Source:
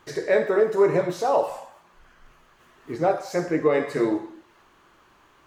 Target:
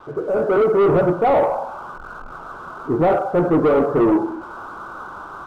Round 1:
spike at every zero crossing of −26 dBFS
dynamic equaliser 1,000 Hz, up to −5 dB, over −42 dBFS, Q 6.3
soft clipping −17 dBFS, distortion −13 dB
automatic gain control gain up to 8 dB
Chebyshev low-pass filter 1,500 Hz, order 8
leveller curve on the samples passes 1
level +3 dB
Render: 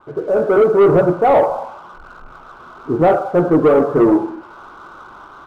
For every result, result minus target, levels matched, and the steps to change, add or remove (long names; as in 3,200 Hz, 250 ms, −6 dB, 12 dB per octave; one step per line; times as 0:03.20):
spike at every zero crossing: distortion −11 dB; soft clipping: distortion −5 dB
change: spike at every zero crossing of −15 dBFS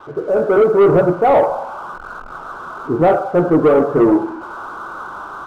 soft clipping: distortion −6 dB
change: soft clipping −23.5 dBFS, distortion −8 dB